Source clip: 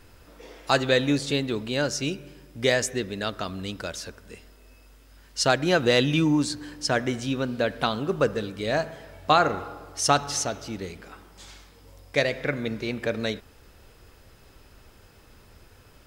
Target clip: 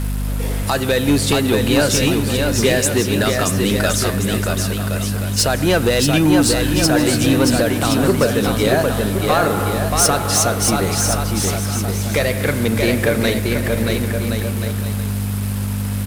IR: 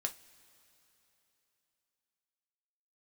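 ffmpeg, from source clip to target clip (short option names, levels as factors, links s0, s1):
-filter_complex "[0:a]highpass=88,aeval=exprs='val(0)+0.0178*(sin(2*PI*50*n/s)+sin(2*PI*2*50*n/s)/2+sin(2*PI*3*50*n/s)/3+sin(2*PI*4*50*n/s)/4+sin(2*PI*5*50*n/s)/5)':c=same,asplit=2[s0][s1];[s1]acompressor=threshold=0.0398:ratio=6,volume=1.33[s2];[s0][s2]amix=inputs=2:normalize=0,alimiter=limit=0.282:level=0:latency=1:release=294,acrusher=bits=6:mix=0:aa=0.000001,aresample=32000,aresample=44100,asoftclip=type=tanh:threshold=0.141,highshelf=f=7800:t=q:w=1.5:g=6,aecho=1:1:630|1071|1380|1596|1747:0.631|0.398|0.251|0.158|0.1,volume=2.66"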